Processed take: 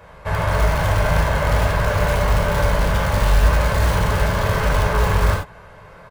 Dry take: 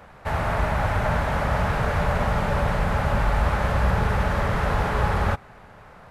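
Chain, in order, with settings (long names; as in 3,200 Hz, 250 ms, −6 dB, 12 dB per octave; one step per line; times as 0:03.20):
comb filter 1.9 ms, depth 45%
in parallel at −8.5 dB: wrap-around overflow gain 14.5 dB
on the sum: reverb whose tail is shaped and stops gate 110 ms flat, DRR −0.5 dB
level −2.5 dB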